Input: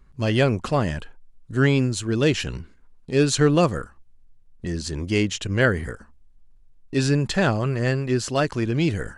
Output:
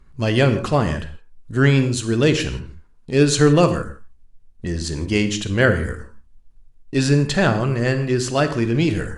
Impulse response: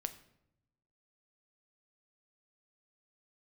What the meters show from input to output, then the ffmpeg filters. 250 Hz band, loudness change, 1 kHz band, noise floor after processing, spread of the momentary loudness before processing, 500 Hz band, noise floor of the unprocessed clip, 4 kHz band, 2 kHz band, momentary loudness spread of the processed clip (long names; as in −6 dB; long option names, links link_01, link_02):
+3.5 dB, +3.5 dB, +3.5 dB, −50 dBFS, 12 LU, +3.5 dB, −52 dBFS, +3.5 dB, +3.5 dB, 13 LU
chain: -filter_complex "[1:a]atrim=start_sample=2205,atrim=end_sample=3969,asetrate=22491,aresample=44100[link_01];[0:a][link_01]afir=irnorm=-1:irlink=0,volume=1dB"